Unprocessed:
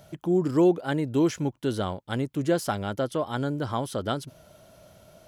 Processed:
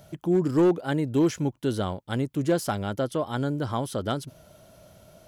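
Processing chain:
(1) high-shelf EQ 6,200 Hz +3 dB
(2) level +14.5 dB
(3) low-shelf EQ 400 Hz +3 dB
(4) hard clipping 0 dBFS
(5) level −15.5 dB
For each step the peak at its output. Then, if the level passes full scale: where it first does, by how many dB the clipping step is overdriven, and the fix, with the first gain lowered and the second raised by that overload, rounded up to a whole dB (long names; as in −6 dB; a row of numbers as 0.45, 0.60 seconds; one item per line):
−12.0, +2.5, +4.0, 0.0, −15.5 dBFS
step 2, 4.0 dB
step 2 +10.5 dB, step 5 −11.5 dB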